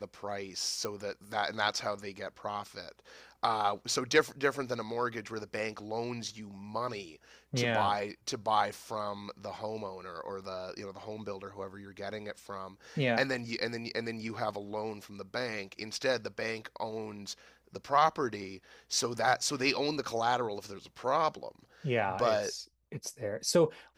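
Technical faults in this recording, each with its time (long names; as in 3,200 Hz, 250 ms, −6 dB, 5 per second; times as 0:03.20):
0:00.85: click −20 dBFS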